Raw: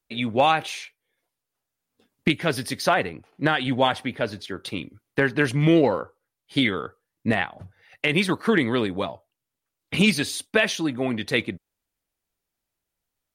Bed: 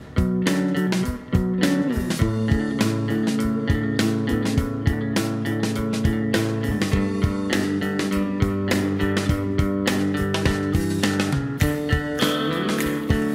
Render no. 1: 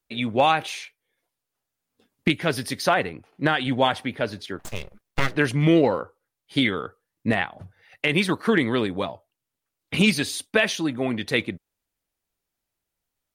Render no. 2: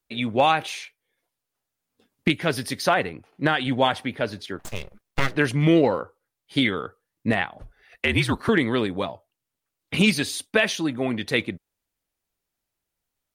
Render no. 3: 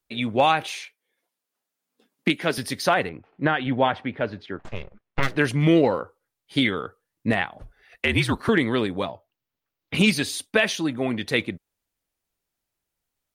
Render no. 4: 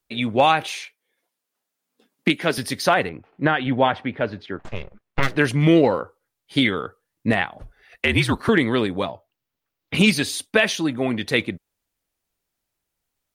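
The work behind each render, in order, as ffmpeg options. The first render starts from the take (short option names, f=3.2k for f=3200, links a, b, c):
-filter_complex "[0:a]asplit=3[a][b][c];[a]afade=t=out:st=4.58:d=0.02[d];[b]aeval=exprs='abs(val(0))':c=same,afade=t=in:st=4.58:d=0.02,afade=t=out:st=5.35:d=0.02[e];[c]afade=t=in:st=5.35:d=0.02[f];[d][e][f]amix=inputs=3:normalize=0"
-filter_complex "[0:a]asettb=1/sr,asplit=3[a][b][c];[a]atrim=end=7.594[d];[b]atrim=start=7.59:end=8.49,asetpts=PTS-STARTPTS,afade=t=in:d=0.004:c=qsin,afade=t=out:st=0.896:d=0.004:c=qsin,afreqshift=-62[e];[c]atrim=start=8.486[f];[d][e]acrossfade=d=0.004:c1=hsin:c2=qsin[g];[g][f]acrossfade=d=0.004:c1=qsin:c2=hsin"
-filter_complex "[0:a]asettb=1/sr,asplit=3[a][b][c];[a]atrim=end=0.734[d];[b]atrim=start=0.73:end=2.58,asetpts=PTS-STARTPTS,afade=t=in:d=0.004:c=qsin,afade=t=out:st=1.846:d=0.004:c=qsin,highpass=f=170:w=0.5412,highpass=f=170:w=1.3066[e];[c]atrim=start=2.576[f];[d][e]acrossfade=d=0.004:c1=hsin:c2=qsin[g];[g][f]acrossfade=d=0.004:c1=qsin:c2=hsin,asettb=1/sr,asplit=3[h][i][j];[h]atrim=end=3.094[k];[i]atrim=start=3.09:end=5.23,asetpts=PTS-STARTPTS,afade=t=in:d=0.004:c=qsin,afade=t=out:st=2.136:d=0.004:c=qsin,lowpass=2.5k[l];[j]atrim=start=5.226[m];[k][l]acrossfade=d=0.004:c1=hsin:c2=qsin[n];[n][m]acrossfade=d=0.004:c1=qsin:c2=hsin,asettb=1/sr,asplit=3[o][p][q];[o]atrim=end=9.104[r];[p]atrim=start=9.1:end=9.95,asetpts=PTS-STARTPTS,afade=t=in:d=0.004:c=qsin,afade=t=out:st=0.846:d=0.004:c=qsin,equalizer=f=8.9k:w=1.5:g=-15[s];[q]atrim=start=9.946[t];[r][s]acrossfade=d=0.004:c1=hsin:c2=qsin[u];[u][t]acrossfade=d=0.004:c1=qsin:c2=hsin"
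-af "volume=2.5dB"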